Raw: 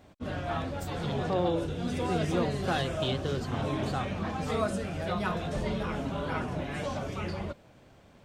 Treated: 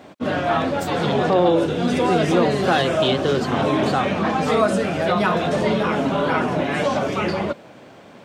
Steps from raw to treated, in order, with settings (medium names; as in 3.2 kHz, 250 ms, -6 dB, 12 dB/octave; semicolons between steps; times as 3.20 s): high-pass 200 Hz 12 dB/octave; treble shelf 5.5 kHz -7.5 dB; in parallel at +1 dB: peak limiter -27 dBFS, peak gain reduction 9.5 dB; on the sum: trim +8.5 dB